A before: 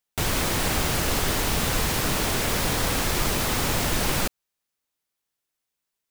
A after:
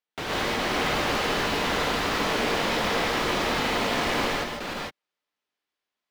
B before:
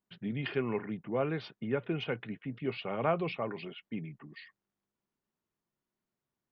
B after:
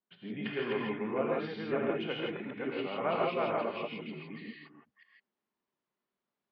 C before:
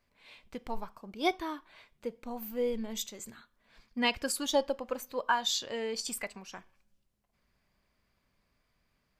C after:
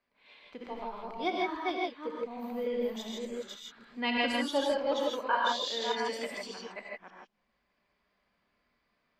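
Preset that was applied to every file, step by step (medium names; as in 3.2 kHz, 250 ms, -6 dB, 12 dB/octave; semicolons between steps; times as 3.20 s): chunks repeated in reverse 296 ms, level -1.5 dB; three-band isolator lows -15 dB, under 190 Hz, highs -19 dB, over 4.7 kHz; gated-style reverb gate 180 ms rising, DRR -1.5 dB; trim -3.5 dB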